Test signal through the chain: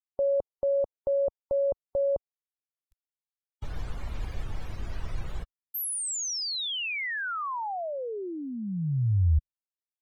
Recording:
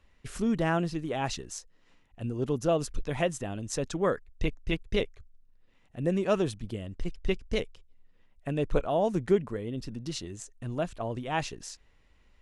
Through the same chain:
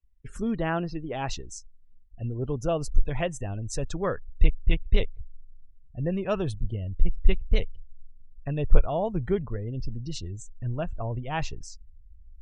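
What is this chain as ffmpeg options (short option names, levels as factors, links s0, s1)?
-af "asubboost=boost=6:cutoff=100,afftdn=nr=30:nf=-45"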